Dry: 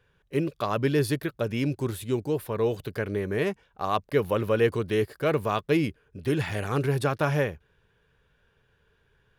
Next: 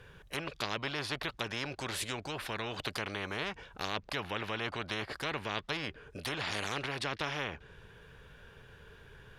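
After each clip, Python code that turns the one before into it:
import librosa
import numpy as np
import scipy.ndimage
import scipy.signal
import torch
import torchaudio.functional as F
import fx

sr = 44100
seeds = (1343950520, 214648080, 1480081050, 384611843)

y = fx.env_lowpass_down(x, sr, base_hz=2600.0, full_db=-22.0)
y = fx.spectral_comp(y, sr, ratio=4.0)
y = y * 10.0 ** (-6.0 / 20.0)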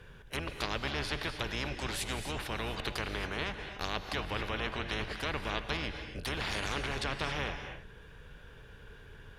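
y = fx.octave_divider(x, sr, octaves=2, level_db=2.0)
y = fx.rev_gated(y, sr, seeds[0], gate_ms=300, shape='rising', drr_db=7.0)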